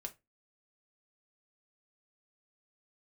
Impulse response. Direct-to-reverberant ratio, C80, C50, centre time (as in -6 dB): 3.5 dB, 28.0 dB, 19.5 dB, 5 ms